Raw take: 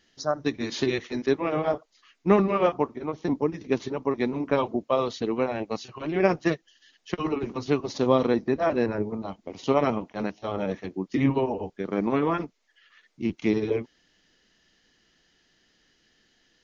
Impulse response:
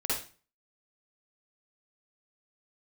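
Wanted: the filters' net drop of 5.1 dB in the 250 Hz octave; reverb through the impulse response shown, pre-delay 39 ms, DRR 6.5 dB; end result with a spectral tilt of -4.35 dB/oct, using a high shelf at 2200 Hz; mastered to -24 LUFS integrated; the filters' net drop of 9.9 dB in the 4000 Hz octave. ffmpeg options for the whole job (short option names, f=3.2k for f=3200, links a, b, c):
-filter_complex "[0:a]equalizer=f=250:t=o:g=-6.5,highshelf=f=2.2k:g=-7,equalizer=f=4k:t=o:g=-6,asplit=2[a][b];[1:a]atrim=start_sample=2205,adelay=39[c];[b][c]afir=irnorm=-1:irlink=0,volume=-13.5dB[d];[a][d]amix=inputs=2:normalize=0,volume=5dB"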